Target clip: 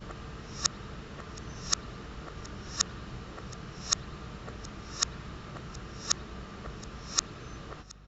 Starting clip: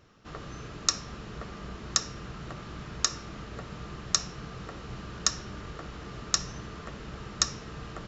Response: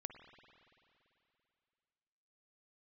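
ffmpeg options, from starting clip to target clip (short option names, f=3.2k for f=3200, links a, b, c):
-filter_complex "[0:a]areverse,aecho=1:1:722:0.075,asplit=2[a][b];[1:a]atrim=start_sample=2205[c];[b][c]afir=irnorm=-1:irlink=0,volume=-0.5dB[d];[a][d]amix=inputs=2:normalize=0,aeval=exprs='val(0)+0.00501*(sin(2*PI*50*n/s)+sin(2*PI*2*50*n/s)/2+sin(2*PI*3*50*n/s)/3+sin(2*PI*4*50*n/s)/4+sin(2*PI*5*50*n/s)/5)':c=same,volume=-6dB"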